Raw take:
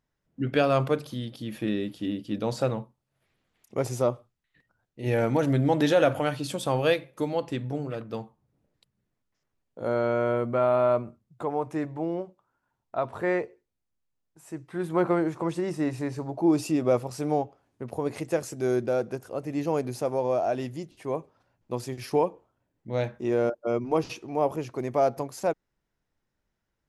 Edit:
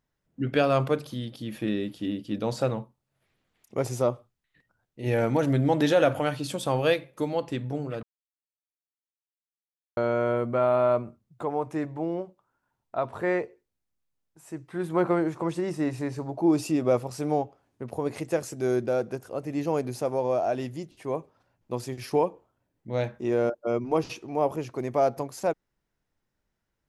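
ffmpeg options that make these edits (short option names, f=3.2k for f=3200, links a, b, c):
-filter_complex "[0:a]asplit=3[a][b][c];[a]atrim=end=8.03,asetpts=PTS-STARTPTS,afade=t=out:st=8.026:d=0.004:c=hsin[d];[b]atrim=start=8.03:end=9.97,asetpts=PTS-STARTPTS,volume=0[e];[c]atrim=start=9.97,asetpts=PTS-STARTPTS,afade=t=in:d=0.004:c=hsin[f];[d][e][f]concat=n=3:v=0:a=1"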